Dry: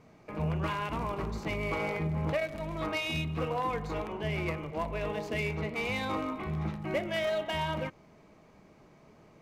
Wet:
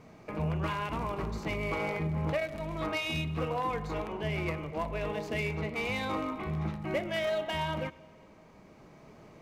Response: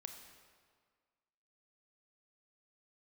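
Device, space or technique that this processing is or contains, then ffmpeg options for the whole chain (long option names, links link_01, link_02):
ducked reverb: -filter_complex "[0:a]asplit=3[link_01][link_02][link_03];[1:a]atrim=start_sample=2205[link_04];[link_02][link_04]afir=irnorm=-1:irlink=0[link_05];[link_03]apad=whole_len=415248[link_06];[link_05][link_06]sidechaincompress=threshold=-41dB:ratio=8:attack=16:release=1330,volume=6dB[link_07];[link_01][link_07]amix=inputs=2:normalize=0,volume=-2dB"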